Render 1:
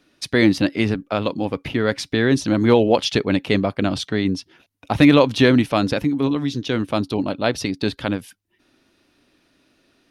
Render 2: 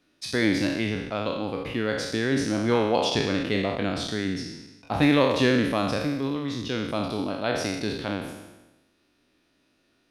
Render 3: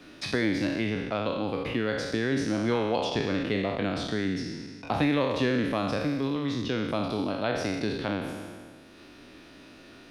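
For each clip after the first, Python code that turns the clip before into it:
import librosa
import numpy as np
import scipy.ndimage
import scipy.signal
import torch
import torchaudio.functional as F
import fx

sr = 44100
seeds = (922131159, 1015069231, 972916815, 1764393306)

y1 = fx.spec_trails(x, sr, decay_s=1.08)
y1 = y1 * 10.0 ** (-9.0 / 20.0)
y2 = fx.high_shelf(y1, sr, hz=6000.0, db=-8.5)
y2 = fx.band_squash(y2, sr, depth_pct=70)
y2 = y2 * 10.0 ** (-2.5 / 20.0)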